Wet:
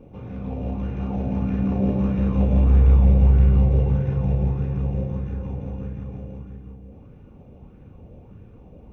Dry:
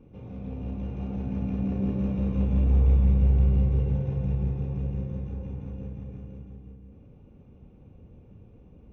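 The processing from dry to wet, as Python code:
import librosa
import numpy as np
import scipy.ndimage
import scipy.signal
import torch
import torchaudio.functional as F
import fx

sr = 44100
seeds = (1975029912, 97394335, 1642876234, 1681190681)

y = fx.bell_lfo(x, sr, hz=1.6, low_hz=590.0, high_hz=1700.0, db=9)
y = y * 10.0 ** (5.5 / 20.0)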